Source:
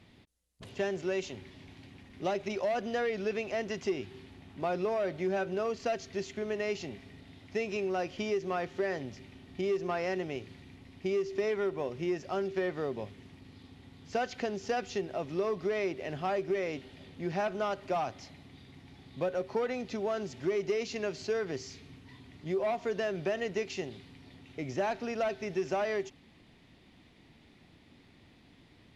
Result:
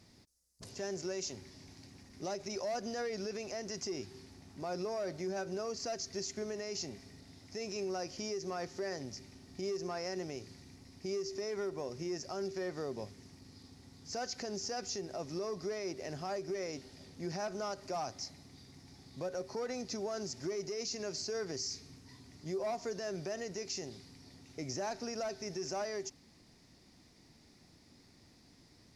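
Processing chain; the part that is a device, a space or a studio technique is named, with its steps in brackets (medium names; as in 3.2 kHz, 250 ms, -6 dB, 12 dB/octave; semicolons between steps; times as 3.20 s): over-bright horn tweeter (resonant high shelf 4.1 kHz +8.5 dB, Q 3; peak limiter -26 dBFS, peak gain reduction 8.5 dB); trim -3.5 dB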